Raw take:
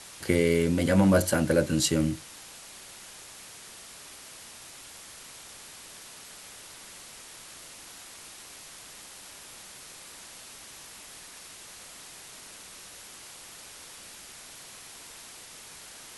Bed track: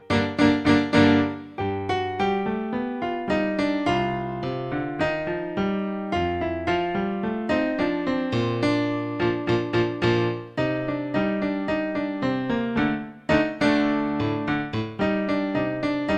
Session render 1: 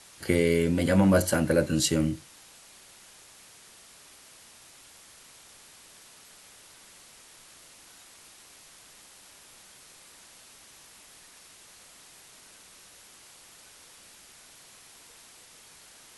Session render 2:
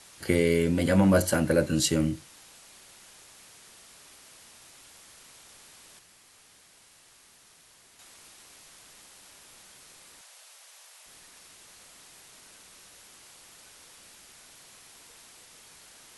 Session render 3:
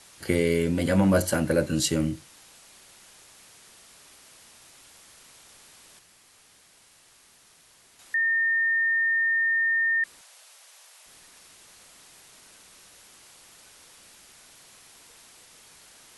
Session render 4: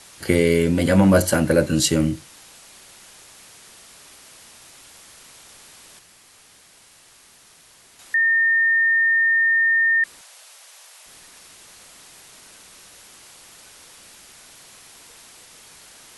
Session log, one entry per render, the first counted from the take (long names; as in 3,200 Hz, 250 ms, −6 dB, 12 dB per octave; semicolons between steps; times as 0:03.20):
noise reduction from a noise print 6 dB
0:05.99–0:07.99: fill with room tone; 0:10.21–0:11.06: Chebyshev high-pass filter 570 Hz, order 3
0:08.14–0:10.04: beep over 1,820 Hz −20.5 dBFS
level +6 dB